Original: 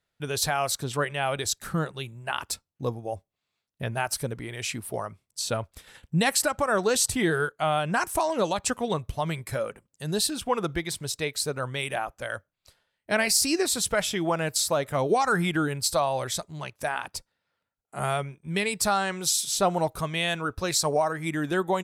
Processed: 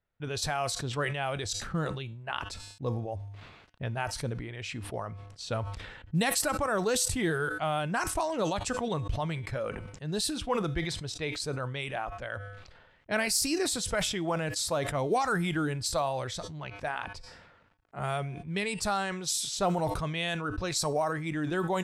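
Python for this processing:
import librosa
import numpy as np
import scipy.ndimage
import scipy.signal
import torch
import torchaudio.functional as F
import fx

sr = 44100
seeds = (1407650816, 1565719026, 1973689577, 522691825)

y = fx.quant_companded(x, sr, bits=8)
y = fx.env_lowpass(y, sr, base_hz=2200.0, full_db=-19.5)
y = fx.low_shelf(y, sr, hz=72.0, db=11.5)
y = fx.comb_fb(y, sr, f0_hz=100.0, decay_s=0.37, harmonics='odd', damping=0.0, mix_pct=40)
y = fx.sustainer(y, sr, db_per_s=44.0)
y = y * librosa.db_to_amplitude(-1.5)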